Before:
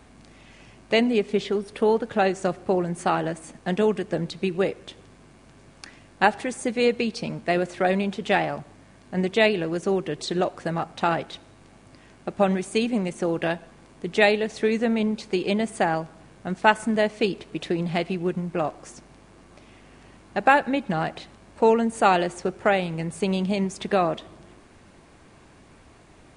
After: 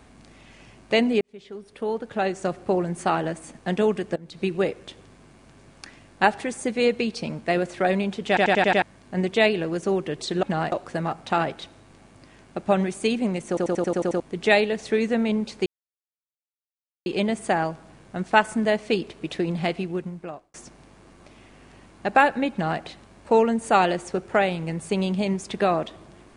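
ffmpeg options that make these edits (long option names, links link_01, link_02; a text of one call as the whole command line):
ffmpeg -i in.wav -filter_complex "[0:a]asplit=21[link_01][link_02][link_03][link_04][link_05][link_06][link_07][link_08][link_09][link_10][link_11][link_12][link_13][link_14][link_15][link_16][link_17][link_18][link_19][link_20][link_21];[link_01]atrim=end=1.21,asetpts=PTS-STARTPTS,afade=type=out:start_time=1.206:duration=0.004:curve=hsin[link_22];[link_02]atrim=start=1.21:end=4.16,asetpts=PTS-STARTPTS,afade=type=in:duration=1.49,afade=type=out:start_time=2.946:duration=0.004:curve=hsin:silence=0.11885[link_23];[link_03]atrim=start=4.16:end=8.372,asetpts=PTS-STARTPTS,afade=type=in:duration=0.25:curve=qua:silence=0.11885[link_24];[link_04]atrim=start=8.278:end=8.372[link_25];[link_05]atrim=start=8.278:end=8.372[link_26];[link_06]atrim=start=8.278:end=8.372[link_27];[link_07]atrim=start=8.278:end=8.372[link_28];[link_08]atrim=start=8.278:end=8.372[link_29];[link_09]atrim=start=8.818:end=10.432[link_30];[link_10]atrim=start=20.828:end=21.122[link_31];[link_11]atrim=start=10.428:end=13.282[link_32];[link_12]atrim=start=13.188:end=13.282[link_33];[link_13]atrim=start=13.188:end=13.282[link_34];[link_14]atrim=start=13.188:end=13.282[link_35];[link_15]atrim=start=13.188:end=13.282[link_36];[link_16]atrim=start=13.188:end=13.282[link_37];[link_17]atrim=start=13.188:end=13.282[link_38];[link_18]atrim=start=13.188:end=13.282[link_39];[link_19]atrim=start=13.908:end=15.37,asetpts=PTS-STARTPTS,afade=type=out:start_time=1.458:duration=0.004:curve=hsin,apad=pad_dur=1.4[link_40];[link_20]atrim=start=15.37:end=18.85,asetpts=PTS-STARTPTS,afade=type=in:duration=0.004:curve=hsin,afade=type=out:start_time=2.66:duration=0.82[link_41];[link_21]atrim=start=18.85,asetpts=PTS-STARTPTS,afade=type=in:duration=0.004:curve=hsin[link_42];[link_22][link_23][link_24]concat=n=3:v=0:a=1[link_43];[link_43][link_25]acrossfade=duration=0.004:curve1=hsin:curve2=hsin[link_44];[link_44][link_26]acrossfade=duration=0.004:curve1=hsin:curve2=hsin[link_45];[link_45][link_27]acrossfade=duration=0.004:curve1=hsin:curve2=hsin[link_46];[link_46][link_28]acrossfade=duration=0.004:curve1=hsin:curve2=hsin[link_47];[link_47][link_29]acrossfade=duration=0.004:curve1=hsin:curve2=hsin[link_48];[link_48][link_30]acrossfade=duration=0.004:curve1=hsin:curve2=hsin[link_49];[link_49][link_31]acrossfade=duration=0.004:curve1=hsin:curve2=hsin[link_50];[link_50][link_32]acrossfade=duration=0.004:curve1=hsin:curve2=hsin[link_51];[link_51][link_33]acrossfade=duration=0.004:curve1=hsin:curve2=hsin[link_52];[link_52][link_34]acrossfade=duration=0.004:curve1=hsin:curve2=hsin[link_53];[link_53][link_35]acrossfade=duration=0.004:curve1=hsin:curve2=hsin[link_54];[link_54][link_36]acrossfade=duration=0.004:curve1=hsin:curve2=hsin[link_55];[link_55][link_37]acrossfade=duration=0.004:curve1=hsin:curve2=hsin[link_56];[link_56][link_38]acrossfade=duration=0.004:curve1=hsin:curve2=hsin[link_57];[link_57][link_39]acrossfade=duration=0.004:curve1=hsin:curve2=hsin[link_58];[link_40][link_41][link_42]concat=n=3:v=0:a=1[link_59];[link_58][link_59]acrossfade=duration=0.004:curve1=hsin:curve2=hsin" out.wav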